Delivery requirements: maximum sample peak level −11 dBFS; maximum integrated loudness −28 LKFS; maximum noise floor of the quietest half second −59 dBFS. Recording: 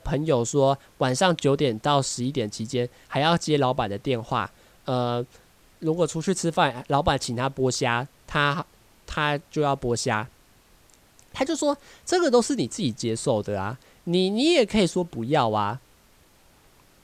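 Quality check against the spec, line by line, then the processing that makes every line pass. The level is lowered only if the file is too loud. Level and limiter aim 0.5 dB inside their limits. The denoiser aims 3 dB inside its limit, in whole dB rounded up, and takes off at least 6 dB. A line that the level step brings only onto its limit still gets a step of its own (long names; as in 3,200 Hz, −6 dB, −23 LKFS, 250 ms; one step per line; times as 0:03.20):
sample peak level −5.5 dBFS: out of spec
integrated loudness −24.5 LKFS: out of spec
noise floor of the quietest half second −57 dBFS: out of spec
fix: level −4 dB
brickwall limiter −11.5 dBFS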